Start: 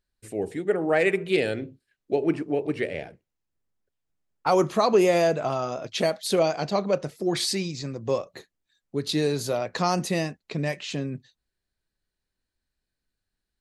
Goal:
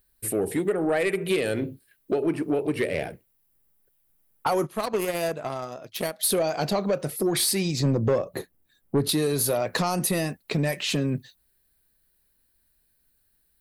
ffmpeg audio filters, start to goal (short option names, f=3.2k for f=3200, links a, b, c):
-filter_complex "[0:a]asplit=3[a][b][c];[a]afade=t=out:st=4.65:d=0.02[d];[b]aeval=exprs='0.355*(cos(1*acos(clip(val(0)/0.355,-1,1)))-cos(1*PI/2))+0.1*(cos(3*acos(clip(val(0)/0.355,-1,1)))-cos(3*PI/2))':c=same,afade=t=in:st=4.65:d=0.02,afade=t=out:st=6.19:d=0.02[e];[c]afade=t=in:st=6.19:d=0.02[f];[d][e][f]amix=inputs=3:normalize=0,aexciter=amount=3.5:drive=9.4:freq=9.3k,acompressor=threshold=-28dB:ratio=6,asettb=1/sr,asplit=3[g][h][i];[g]atrim=end=7.804[j];[h]atrim=start=7.8:end=9.09,asetpts=PTS-STARTPTS,afade=t=in:d=0.004:c=qsin,afade=t=out:st=1.286:d=0.004:c=qsin,tiltshelf=f=1.1k:g=6.5[k];[i]atrim=start=9.086[l];[j][k]acrossfade=d=0.004:c1=hsin:c2=qsin[m];[m][l]acrossfade=d=0.004:c1=qsin:c2=hsin,asoftclip=type=tanh:threshold=-24dB,volume=8.5dB"